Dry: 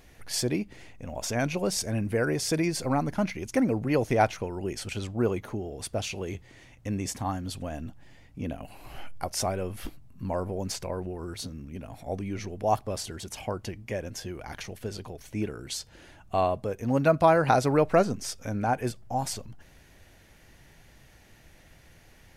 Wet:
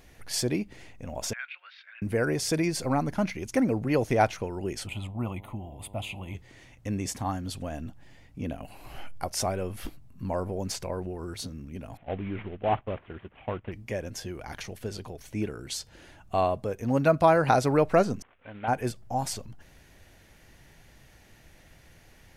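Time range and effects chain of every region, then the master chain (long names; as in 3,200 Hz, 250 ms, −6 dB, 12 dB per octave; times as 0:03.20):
0:01.33–0:02.02: elliptic band-pass filter 1,400–3,800 Hz, stop band 80 dB + high-frequency loss of the air 270 metres
0:04.86–0:06.34: parametric band 4,400 Hz −10.5 dB 0.21 octaves + phaser with its sweep stopped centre 1,600 Hz, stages 6 + hum with harmonics 100 Hz, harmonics 10, −53 dBFS −3 dB per octave
0:11.97–0:13.72: variable-slope delta modulation 16 kbit/s + noise gate −40 dBFS, range −9 dB
0:18.22–0:18.68: variable-slope delta modulation 16 kbit/s + low-shelf EQ 420 Hz −11 dB + expander for the loud parts, over −47 dBFS
whole clip: no processing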